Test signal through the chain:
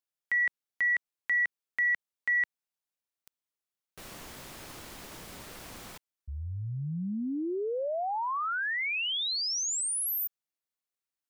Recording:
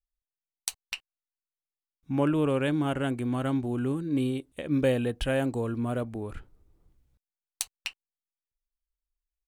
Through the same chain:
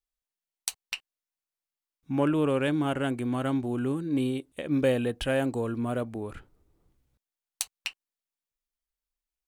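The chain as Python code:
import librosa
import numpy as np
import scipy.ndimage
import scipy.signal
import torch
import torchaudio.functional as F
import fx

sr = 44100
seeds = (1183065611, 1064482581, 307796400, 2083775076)

p1 = 10.0 ** (-19.0 / 20.0) * np.tanh(x / 10.0 ** (-19.0 / 20.0))
p2 = x + (p1 * 10.0 ** (-10.0 / 20.0))
p3 = fx.low_shelf(p2, sr, hz=95.0, db=-8.5)
y = p3 * 10.0 ** (-1.0 / 20.0)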